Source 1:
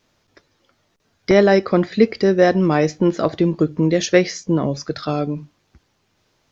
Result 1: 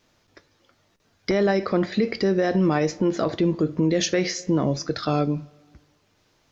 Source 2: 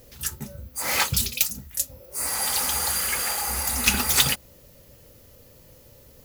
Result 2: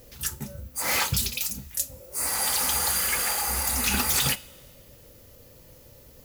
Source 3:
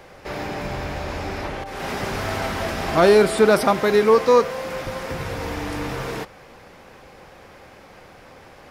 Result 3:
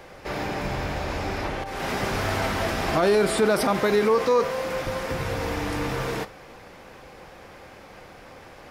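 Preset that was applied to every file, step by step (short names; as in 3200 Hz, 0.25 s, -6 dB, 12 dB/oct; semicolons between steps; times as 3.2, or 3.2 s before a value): two-slope reverb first 0.25 s, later 1.7 s, from -19 dB, DRR 14 dB; limiter -12.5 dBFS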